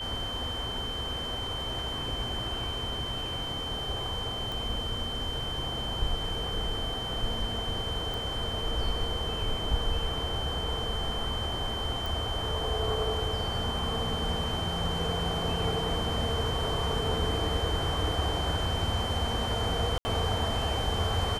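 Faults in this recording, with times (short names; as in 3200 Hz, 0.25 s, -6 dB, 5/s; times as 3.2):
tone 3100 Hz -34 dBFS
4.52 pop
8.14 pop
12.06 pop
19.98–20.05 gap 70 ms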